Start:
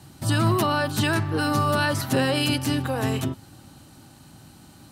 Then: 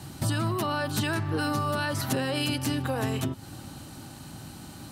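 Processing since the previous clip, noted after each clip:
downward compressor 6 to 1, threshold −31 dBFS, peak gain reduction 13.5 dB
level +5.5 dB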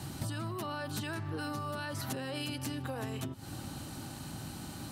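downward compressor 6 to 1, threshold −35 dBFS, peak gain reduction 11.5 dB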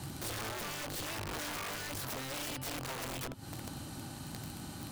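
wrap-around overflow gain 33 dB
level −1 dB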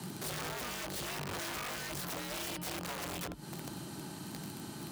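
frequency shifter +44 Hz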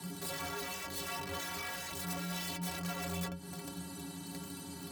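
stiff-string resonator 83 Hz, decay 0.45 s, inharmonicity 0.03
level +10 dB

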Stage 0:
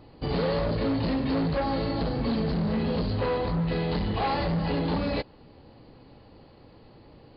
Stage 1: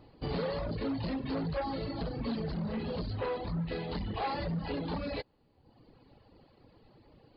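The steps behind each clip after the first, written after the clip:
reverb reduction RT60 1.1 s
level −5.5 dB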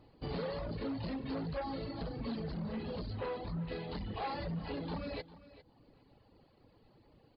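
repeating echo 401 ms, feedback 16%, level −17 dB
level −4.5 dB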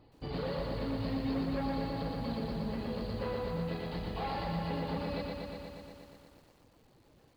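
feedback echo at a low word length 119 ms, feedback 80%, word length 11 bits, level −3 dB

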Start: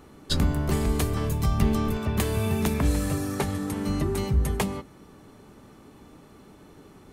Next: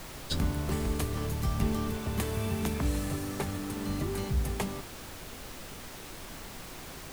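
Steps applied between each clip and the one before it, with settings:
background noise pink −37 dBFS
level −6.5 dB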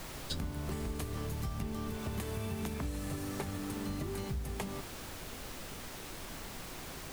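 downward compressor, threshold −33 dBFS, peak gain reduction 10 dB
level −1 dB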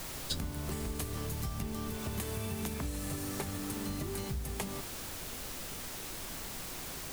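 high-shelf EQ 4,500 Hz +7.5 dB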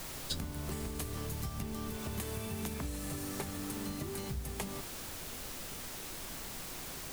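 mains-hum notches 50/100 Hz
level −1.5 dB

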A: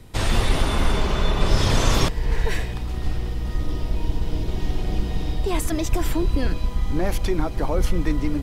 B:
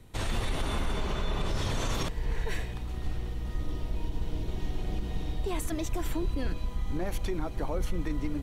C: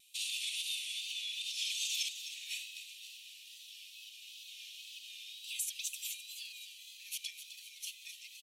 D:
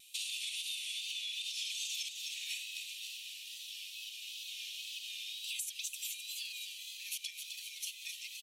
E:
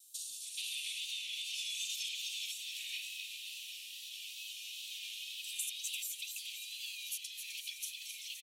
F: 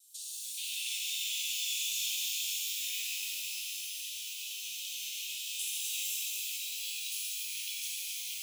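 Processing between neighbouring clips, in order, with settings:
notch filter 5,000 Hz, Q 9.9; brickwall limiter −12.5 dBFS, peak gain reduction 7.5 dB; level −8 dB
Chebyshev high-pass filter 2,500 Hz, order 6; tape wow and flutter 59 cents; echo with shifted repeats 257 ms, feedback 48%, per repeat +83 Hz, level −10.5 dB; level +4.5 dB
downward compressor 4 to 1, threshold −44 dBFS, peak gain reduction 11 dB; level +6 dB
three-band delay without the direct sound highs, lows, mids 310/430 ms, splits 1,600/4,800 Hz; level +1.5 dB
reverb with rising layers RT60 2.6 s, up +12 semitones, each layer −2 dB, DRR −5.5 dB; level −3 dB

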